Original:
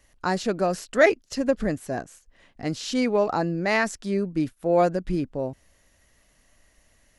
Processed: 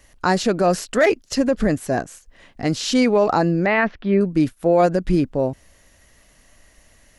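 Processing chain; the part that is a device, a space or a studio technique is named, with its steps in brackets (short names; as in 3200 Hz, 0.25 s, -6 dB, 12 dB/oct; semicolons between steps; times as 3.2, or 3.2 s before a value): 3.66–4.21 inverse Chebyshev low-pass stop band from 7300 Hz, stop band 50 dB; clipper into limiter (hard clip -8.5 dBFS, distortion -28 dB; limiter -16 dBFS, peak gain reduction 7.5 dB); gain +8 dB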